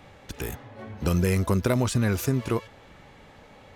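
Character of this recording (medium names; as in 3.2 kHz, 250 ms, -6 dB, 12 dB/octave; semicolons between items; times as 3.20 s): noise floor -51 dBFS; spectral tilt -6.0 dB/octave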